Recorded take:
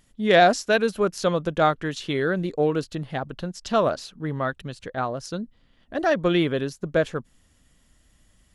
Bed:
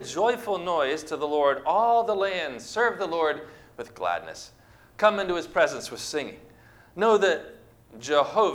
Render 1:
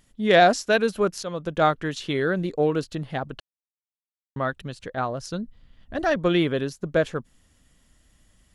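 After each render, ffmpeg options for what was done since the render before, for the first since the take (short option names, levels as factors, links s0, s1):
-filter_complex "[0:a]asettb=1/sr,asplit=3[s0][s1][s2];[s0]atrim=end=4.954[s3];[s1]atrim=start=4.95:end=6.16,asetpts=PTS-STARTPTS,afade=t=in:d=0.004:c=qsin,afade=t=out:st=1.206:d=0.004:c=qsin,asubboost=boost=9:cutoff=170[s4];[s2]atrim=start=6.156[s5];[s3][s4]acrossfade=d=0.004:c1=hsin:c2=qsin[s6];[s6][s5]acrossfade=d=0.004:c1=qsin:c2=hsin,asplit=4[s7][s8][s9][s10];[s7]atrim=end=1.23,asetpts=PTS-STARTPTS,afade=t=out:st=1.226:d=0.004:c=hsin:silence=0.223872[s11];[s8]atrim=start=1.23:end=3.4,asetpts=PTS-STARTPTS,afade=t=in:d=0.41:silence=0.223872,afade=t=out:st=2.166:d=0.004:c=hsin[s12];[s9]atrim=start=3.4:end=4.36,asetpts=PTS-STARTPTS,volume=0[s13];[s10]atrim=start=4.36,asetpts=PTS-STARTPTS,afade=t=in:d=0.004:c=hsin[s14];[s11][s12][s13][s14]concat=n=4:v=0:a=1"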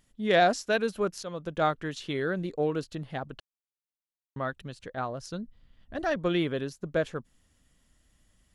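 -af "volume=0.501"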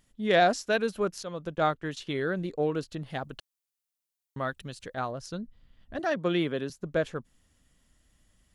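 -filter_complex "[0:a]asettb=1/sr,asplit=3[s0][s1][s2];[s0]atrim=end=1.554[s3];[s1]atrim=start=1.55:end=2.07,asetpts=PTS-STARTPTS,afade=t=in:d=0.004:c=qsin,afade=t=out:st=0.516:d=0.004:c=qsin,agate=range=0.282:threshold=0.00631:ratio=16:release=100:detection=peak[s4];[s2]atrim=start=2.066[s5];[s3][s4]acrossfade=d=0.004:c1=hsin:c2=qsin[s6];[s6][s5]acrossfade=d=0.004:c1=qsin:c2=hsin,asettb=1/sr,asplit=3[s7][s8][s9];[s7]atrim=end=3.064[s10];[s8]atrim=start=3.06:end=5.12,asetpts=PTS-STARTPTS,afade=t=in:d=0.004:c=qsin,afade=t=out:st=2.056:d=0.004:c=qsin,highshelf=f=4100:g=9[s11];[s9]atrim=start=5.116[s12];[s10][s11]acrossfade=d=0.004:c1=hsin:c2=qsin[s13];[s13][s12]acrossfade=d=0.004:c1=qsin:c2=hsin,asettb=1/sr,asplit=3[s14][s15][s16];[s14]atrim=end=5.994[s17];[s15]atrim=start=5.99:end=6.7,asetpts=PTS-STARTPTS,afade=t=in:d=0.004:c=qsin,afade=t=out:st=0.706:d=0.004:c=qsin,highpass=f=130:w=0.5412,highpass=f=130:w=1.3066[s18];[s16]atrim=start=6.696[s19];[s17][s18]acrossfade=d=0.004:c1=hsin:c2=qsin[s20];[s20][s19]acrossfade=d=0.004:c1=qsin:c2=hsin"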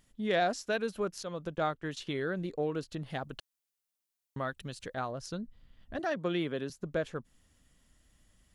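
-af "acompressor=threshold=0.0141:ratio=1.5"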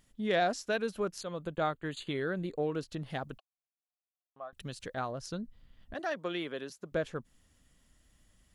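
-filter_complex "[0:a]asettb=1/sr,asplit=3[s0][s1][s2];[s0]atrim=end=1.214[s3];[s1]atrim=start=1.21:end=2.64,asetpts=PTS-STARTPTS,afade=t=in:d=0.004:c=qsin,afade=t=out:st=1.426:d=0.004:c=qsin,asuperstop=centerf=5500:order=8:qfactor=3.3[s4];[s2]atrim=start=2.636[s5];[s3][s4]acrossfade=d=0.004:c1=hsin:c2=qsin[s6];[s6][s5]acrossfade=d=0.004:c1=qsin:c2=hsin,asettb=1/sr,asplit=3[s7][s8][s9];[s7]atrim=end=3.384[s10];[s8]atrim=start=3.38:end=4.53,asetpts=PTS-STARTPTS,afade=t=in:d=0.004:c=qsin,afade=t=out:st=1.146:d=0.004:c=qsin,asplit=3[s11][s12][s13];[s11]bandpass=f=730:t=q:w=8,volume=1[s14];[s12]bandpass=f=1090:t=q:w=8,volume=0.501[s15];[s13]bandpass=f=2440:t=q:w=8,volume=0.355[s16];[s14][s15][s16]amix=inputs=3:normalize=0[s17];[s9]atrim=start=4.526[s18];[s10][s17]acrossfade=d=0.004:c1=hsin:c2=qsin[s19];[s19][s18]acrossfade=d=0.004:c1=qsin:c2=hsin,asettb=1/sr,asplit=3[s20][s21][s22];[s20]atrim=end=5.944[s23];[s21]atrim=start=5.94:end=6.92,asetpts=PTS-STARTPTS,afade=t=in:d=0.004:c=qsin,afade=t=out:st=0.976:d=0.004:c=qsin,highpass=f=480:p=1[s24];[s22]atrim=start=6.916[s25];[s23][s24]acrossfade=d=0.004:c1=hsin:c2=qsin[s26];[s26][s25]acrossfade=d=0.004:c1=qsin:c2=hsin"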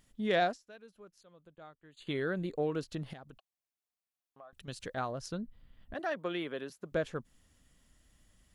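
-filter_complex "[0:a]asettb=1/sr,asplit=3[s0][s1][s2];[s0]atrim=end=3.134[s3];[s1]atrim=start=3.13:end=4.68,asetpts=PTS-STARTPTS,afade=t=in:d=0.004:c=qsin,afade=t=out:st=1.546:d=0.004:c=qsin,acompressor=threshold=0.00282:ratio=3:attack=3.2:release=140:knee=1:detection=peak[s4];[s2]atrim=start=4.676[s5];[s3][s4]acrossfade=d=0.004:c1=hsin:c2=qsin[s6];[s6][s5]acrossfade=d=0.004:c1=qsin:c2=hsin,asettb=1/sr,asplit=3[s7][s8][s9];[s7]atrim=end=5.284[s10];[s8]atrim=start=5.28:end=6.85,asetpts=PTS-STARTPTS,afade=t=in:d=0.004:c=qsin,afade=t=out:st=1.566:d=0.004:c=qsin,equalizer=f=6000:w=1:g=-6.5[s11];[s9]atrim=start=6.846[s12];[s10][s11]acrossfade=d=0.004:c1=hsin:c2=qsin[s13];[s13][s12]acrossfade=d=0.004:c1=qsin:c2=hsin,asplit=3[s14][s15][s16];[s14]atrim=end=0.58,asetpts=PTS-STARTPTS,afade=t=out:st=0.44:d=0.14:silence=0.0891251[s17];[s15]atrim=start=0.58:end=1.97,asetpts=PTS-STARTPTS,volume=0.0891[s18];[s16]atrim=start=1.97,asetpts=PTS-STARTPTS,afade=t=in:d=0.14:silence=0.0891251[s19];[s17][s18][s19]concat=n=3:v=0:a=1"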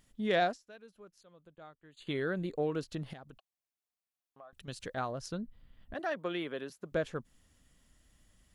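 -af anull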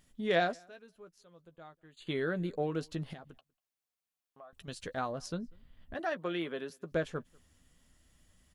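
-filter_complex "[0:a]asplit=2[s0][s1];[s1]adelay=12,volume=0.316[s2];[s0][s2]amix=inputs=2:normalize=0,asplit=2[s3][s4];[s4]adelay=192.4,volume=0.0355,highshelf=f=4000:g=-4.33[s5];[s3][s5]amix=inputs=2:normalize=0"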